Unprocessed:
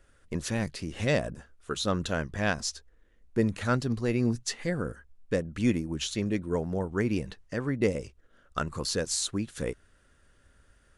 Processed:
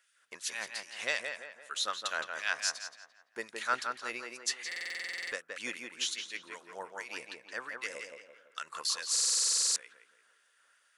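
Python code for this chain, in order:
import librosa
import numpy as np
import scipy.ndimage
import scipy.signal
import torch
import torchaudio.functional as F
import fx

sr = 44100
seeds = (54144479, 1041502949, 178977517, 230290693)

y = fx.filter_lfo_highpass(x, sr, shape='sine', hz=2.6, low_hz=960.0, high_hz=2700.0, q=0.91)
y = fx.echo_tape(y, sr, ms=170, feedback_pct=47, wet_db=-3.5, lp_hz=2500.0, drive_db=18.0, wow_cents=29)
y = fx.buffer_glitch(y, sr, at_s=(4.67, 9.11), block=2048, repeats=13)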